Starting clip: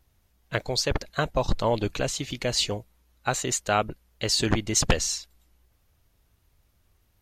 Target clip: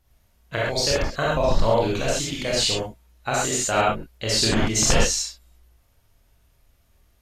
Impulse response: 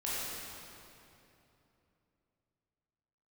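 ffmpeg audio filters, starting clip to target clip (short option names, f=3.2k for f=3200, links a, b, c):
-filter_complex "[1:a]atrim=start_sample=2205,atrim=end_sample=3969,asetrate=28665,aresample=44100[a];[0:a][a]afir=irnorm=-1:irlink=0"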